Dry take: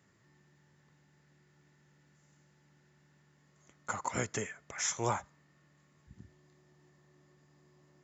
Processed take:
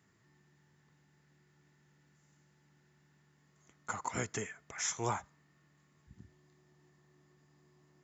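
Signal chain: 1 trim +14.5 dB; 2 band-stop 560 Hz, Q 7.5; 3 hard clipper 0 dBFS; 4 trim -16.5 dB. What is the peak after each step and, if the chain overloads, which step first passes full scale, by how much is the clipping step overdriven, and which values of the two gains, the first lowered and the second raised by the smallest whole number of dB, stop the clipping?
-2.5 dBFS, -3.0 dBFS, -3.0 dBFS, -19.5 dBFS; nothing clips

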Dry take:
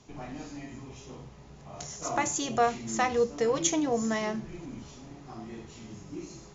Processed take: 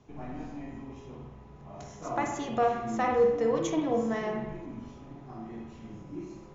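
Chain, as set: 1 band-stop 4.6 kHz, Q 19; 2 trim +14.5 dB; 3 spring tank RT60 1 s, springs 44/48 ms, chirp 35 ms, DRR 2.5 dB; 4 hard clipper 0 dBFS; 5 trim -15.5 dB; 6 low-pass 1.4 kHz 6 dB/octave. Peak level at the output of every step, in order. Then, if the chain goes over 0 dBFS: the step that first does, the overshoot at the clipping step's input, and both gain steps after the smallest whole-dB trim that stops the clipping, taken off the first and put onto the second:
-12.5 dBFS, +2.0 dBFS, +3.5 dBFS, 0.0 dBFS, -15.5 dBFS, -15.5 dBFS; step 2, 3.5 dB; step 2 +10.5 dB, step 5 -11.5 dB

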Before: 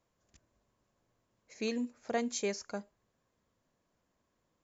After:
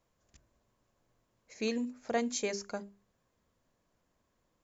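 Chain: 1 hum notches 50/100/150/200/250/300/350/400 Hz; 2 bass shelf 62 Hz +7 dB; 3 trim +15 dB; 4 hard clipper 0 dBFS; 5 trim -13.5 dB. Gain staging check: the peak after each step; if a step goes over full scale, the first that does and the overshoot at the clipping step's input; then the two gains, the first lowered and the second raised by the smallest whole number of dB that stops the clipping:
-21.0 dBFS, -20.5 dBFS, -5.5 dBFS, -5.5 dBFS, -19.0 dBFS; nothing clips

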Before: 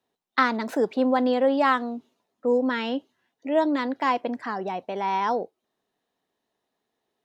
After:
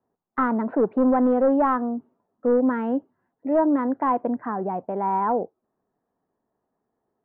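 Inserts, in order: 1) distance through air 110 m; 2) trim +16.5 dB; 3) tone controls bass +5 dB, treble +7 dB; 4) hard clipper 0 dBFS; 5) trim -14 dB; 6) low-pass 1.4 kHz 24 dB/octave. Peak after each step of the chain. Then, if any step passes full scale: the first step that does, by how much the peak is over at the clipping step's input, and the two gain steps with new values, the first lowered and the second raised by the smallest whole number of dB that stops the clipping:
-7.0 dBFS, +9.5 dBFS, +9.5 dBFS, 0.0 dBFS, -14.0 dBFS, -12.5 dBFS; step 2, 9.5 dB; step 2 +6.5 dB, step 5 -4 dB

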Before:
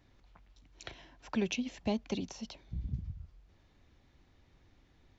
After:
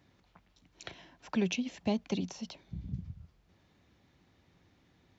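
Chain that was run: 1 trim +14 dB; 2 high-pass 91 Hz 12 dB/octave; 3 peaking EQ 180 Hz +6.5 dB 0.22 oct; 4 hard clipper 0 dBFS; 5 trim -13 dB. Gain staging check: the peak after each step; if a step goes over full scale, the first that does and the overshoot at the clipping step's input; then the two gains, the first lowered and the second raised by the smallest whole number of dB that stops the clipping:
-6.0 dBFS, -5.5 dBFS, -5.0 dBFS, -5.0 dBFS, -18.0 dBFS; nothing clips

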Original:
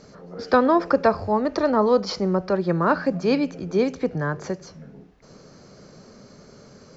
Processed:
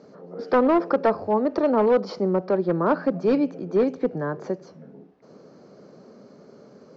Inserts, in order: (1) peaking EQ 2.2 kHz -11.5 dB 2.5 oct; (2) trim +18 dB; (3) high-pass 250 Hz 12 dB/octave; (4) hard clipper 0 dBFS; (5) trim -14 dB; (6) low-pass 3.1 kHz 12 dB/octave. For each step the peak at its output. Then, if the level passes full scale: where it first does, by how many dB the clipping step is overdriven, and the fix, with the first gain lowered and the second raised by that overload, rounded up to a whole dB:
-8.5 dBFS, +9.5 dBFS, +8.0 dBFS, 0.0 dBFS, -14.0 dBFS, -13.5 dBFS; step 2, 8.0 dB; step 2 +10 dB, step 5 -6 dB

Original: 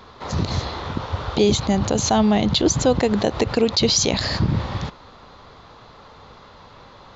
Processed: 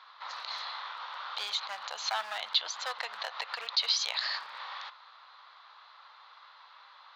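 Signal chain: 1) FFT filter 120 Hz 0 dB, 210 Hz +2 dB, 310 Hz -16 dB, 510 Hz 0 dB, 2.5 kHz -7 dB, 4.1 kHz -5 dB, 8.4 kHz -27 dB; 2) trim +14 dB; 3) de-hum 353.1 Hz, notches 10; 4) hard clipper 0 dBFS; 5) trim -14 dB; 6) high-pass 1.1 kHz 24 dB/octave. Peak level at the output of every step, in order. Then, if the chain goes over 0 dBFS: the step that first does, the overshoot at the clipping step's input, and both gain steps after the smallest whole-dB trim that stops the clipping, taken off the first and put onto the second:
-9.0 dBFS, +5.0 dBFS, +5.0 dBFS, 0.0 dBFS, -14.0 dBFS, -13.5 dBFS; step 2, 5.0 dB; step 2 +9 dB, step 5 -9 dB

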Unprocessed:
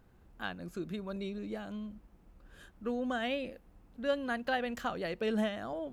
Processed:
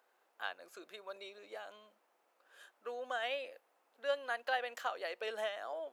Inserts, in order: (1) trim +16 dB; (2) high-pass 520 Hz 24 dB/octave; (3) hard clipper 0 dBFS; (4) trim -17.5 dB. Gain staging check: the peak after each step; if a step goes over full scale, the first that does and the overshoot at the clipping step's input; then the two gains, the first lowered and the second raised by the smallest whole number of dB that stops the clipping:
-4.0 dBFS, -5.0 dBFS, -5.0 dBFS, -22.5 dBFS; nothing clips

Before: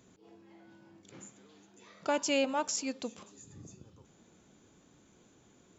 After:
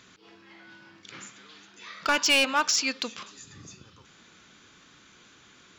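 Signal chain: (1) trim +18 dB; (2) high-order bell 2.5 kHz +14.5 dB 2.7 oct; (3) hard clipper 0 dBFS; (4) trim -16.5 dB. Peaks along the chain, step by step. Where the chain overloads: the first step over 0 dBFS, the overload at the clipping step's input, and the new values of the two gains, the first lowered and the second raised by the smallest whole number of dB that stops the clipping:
-0.5 dBFS, +9.0 dBFS, 0.0 dBFS, -16.5 dBFS; step 2, 9.0 dB; step 1 +9 dB, step 4 -7.5 dB

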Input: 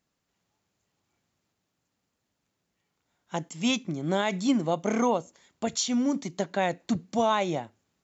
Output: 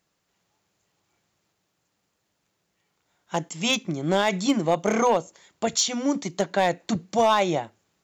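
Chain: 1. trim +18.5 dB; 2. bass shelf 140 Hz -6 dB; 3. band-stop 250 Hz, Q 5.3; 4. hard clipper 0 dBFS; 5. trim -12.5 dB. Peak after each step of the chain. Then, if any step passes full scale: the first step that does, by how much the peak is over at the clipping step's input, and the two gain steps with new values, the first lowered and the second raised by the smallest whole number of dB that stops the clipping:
+5.5 dBFS, +5.5 dBFS, +5.5 dBFS, 0.0 dBFS, -12.5 dBFS; step 1, 5.5 dB; step 1 +12.5 dB, step 5 -6.5 dB

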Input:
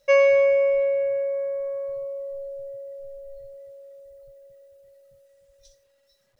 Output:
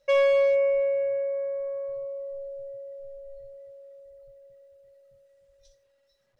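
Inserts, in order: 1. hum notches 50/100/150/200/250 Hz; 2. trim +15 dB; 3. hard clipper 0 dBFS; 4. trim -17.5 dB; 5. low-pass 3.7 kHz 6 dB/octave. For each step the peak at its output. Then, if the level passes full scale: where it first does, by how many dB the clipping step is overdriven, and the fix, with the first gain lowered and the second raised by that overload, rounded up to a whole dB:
-9.5 dBFS, +5.5 dBFS, 0.0 dBFS, -17.5 dBFS, -17.5 dBFS; step 2, 5.5 dB; step 2 +9 dB, step 4 -11.5 dB

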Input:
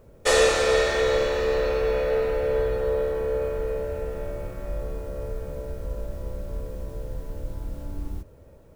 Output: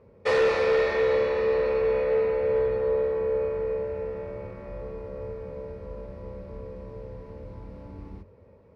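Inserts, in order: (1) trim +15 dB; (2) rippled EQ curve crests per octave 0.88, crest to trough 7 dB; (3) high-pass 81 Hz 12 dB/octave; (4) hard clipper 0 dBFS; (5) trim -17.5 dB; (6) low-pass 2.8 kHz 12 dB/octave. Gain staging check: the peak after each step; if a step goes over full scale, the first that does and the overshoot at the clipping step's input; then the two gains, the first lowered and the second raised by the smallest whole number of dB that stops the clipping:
+8.0 dBFS, +9.5 dBFS, +8.5 dBFS, 0.0 dBFS, -17.5 dBFS, -17.0 dBFS; step 1, 8.5 dB; step 1 +6 dB, step 5 -8.5 dB

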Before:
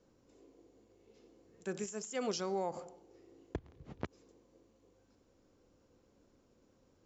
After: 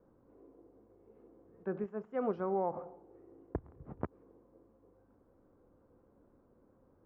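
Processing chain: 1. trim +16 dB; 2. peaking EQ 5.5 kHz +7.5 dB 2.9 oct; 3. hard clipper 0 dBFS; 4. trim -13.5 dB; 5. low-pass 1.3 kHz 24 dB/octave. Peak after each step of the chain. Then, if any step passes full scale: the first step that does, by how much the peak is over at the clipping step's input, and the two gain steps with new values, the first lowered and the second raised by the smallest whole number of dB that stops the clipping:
-7.0 dBFS, -3.5 dBFS, -3.5 dBFS, -17.0 dBFS, -20.5 dBFS; nothing clips

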